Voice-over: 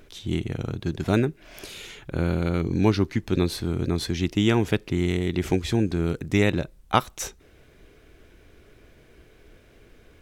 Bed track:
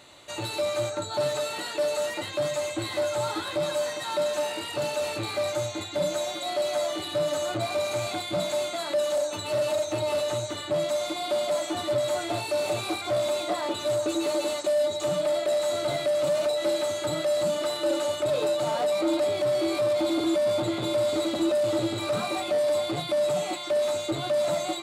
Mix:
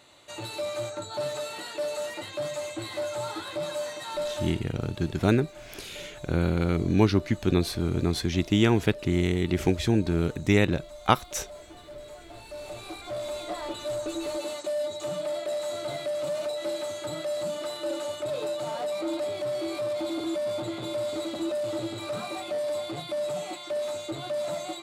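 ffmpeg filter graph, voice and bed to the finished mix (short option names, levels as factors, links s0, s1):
-filter_complex "[0:a]adelay=4150,volume=0.944[s0];[1:a]volume=2.51,afade=t=out:st=4.31:d=0.36:silence=0.211349,afade=t=in:st=12.28:d=1.35:silence=0.237137[s1];[s0][s1]amix=inputs=2:normalize=0"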